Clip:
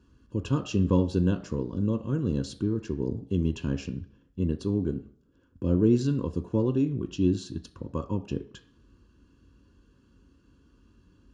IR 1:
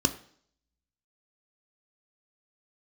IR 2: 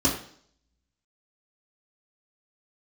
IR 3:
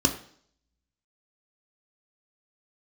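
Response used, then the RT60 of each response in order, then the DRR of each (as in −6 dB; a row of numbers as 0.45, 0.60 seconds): 1; 0.55, 0.55, 0.55 seconds; 7.5, −6.5, 3.5 decibels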